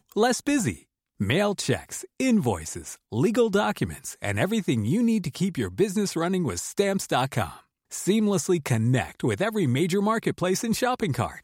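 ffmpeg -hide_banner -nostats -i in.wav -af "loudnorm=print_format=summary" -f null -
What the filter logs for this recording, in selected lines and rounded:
Input Integrated:    -25.3 LUFS
Input True Peak:      -9.4 dBTP
Input LRA:             1.0 LU
Input Threshold:     -35.5 LUFS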